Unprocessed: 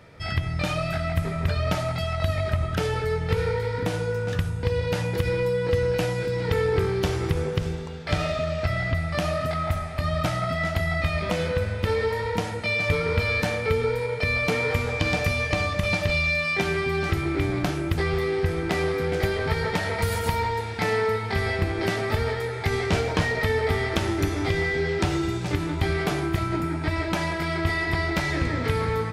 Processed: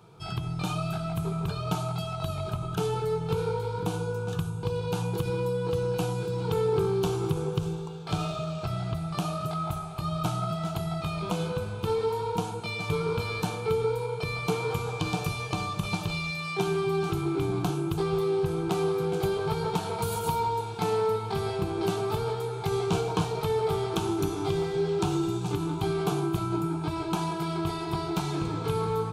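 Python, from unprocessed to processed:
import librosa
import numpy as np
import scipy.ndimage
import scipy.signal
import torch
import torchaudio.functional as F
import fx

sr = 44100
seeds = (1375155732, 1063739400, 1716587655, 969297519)

y = scipy.signal.sosfilt(scipy.signal.butter(2, 44.0, 'highpass', fs=sr, output='sos'), x)
y = fx.peak_eq(y, sr, hz=5100.0, db=-7.0, octaves=0.36)
y = fx.fixed_phaser(y, sr, hz=380.0, stages=8)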